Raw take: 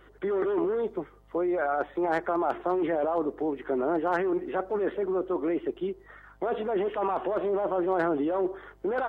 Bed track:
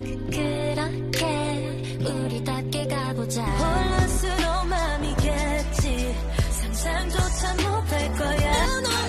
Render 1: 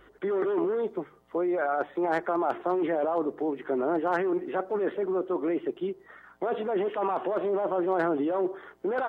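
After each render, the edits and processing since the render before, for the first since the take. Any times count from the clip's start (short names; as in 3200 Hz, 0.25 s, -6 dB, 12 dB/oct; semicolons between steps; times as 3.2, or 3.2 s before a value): de-hum 50 Hz, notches 3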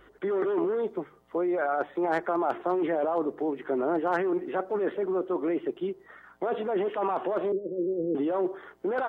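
7.52–8.15 Chebyshev low-pass 510 Hz, order 6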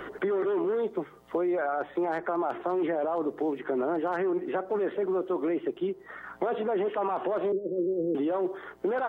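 limiter -20.5 dBFS, peak gain reduction 5 dB; three-band squash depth 70%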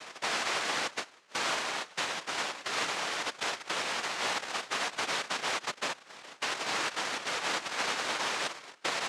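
noise vocoder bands 1; band-pass 1000 Hz, Q 0.53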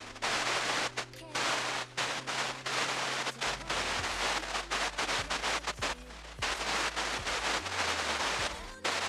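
add bed track -23.5 dB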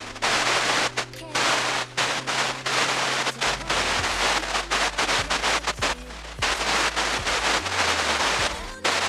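gain +9.5 dB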